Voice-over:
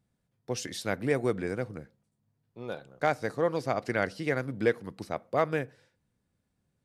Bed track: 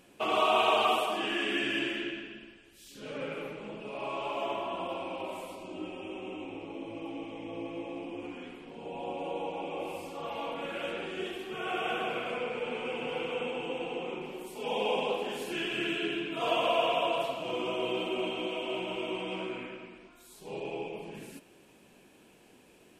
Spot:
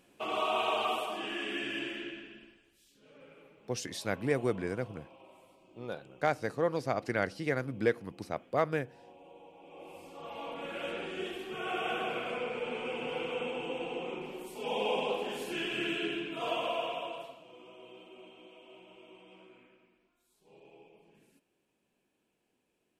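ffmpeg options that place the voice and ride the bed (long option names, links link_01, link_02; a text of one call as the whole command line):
ffmpeg -i stem1.wav -i stem2.wav -filter_complex "[0:a]adelay=3200,volume=-2.5dB[link_01];[1:a]volume=11.5dB,afade=type=out:start_time=2.43:duration=0.57:silence=0.223872,afade=type=in:start_time=9.6:duration=1.34:silence=0.141254,afade=type=out:start_time=16.01:duration=1.47:silence=0.11885[link_02];[link_01][link_02]amix=inputs=2:normalize=0" out.wav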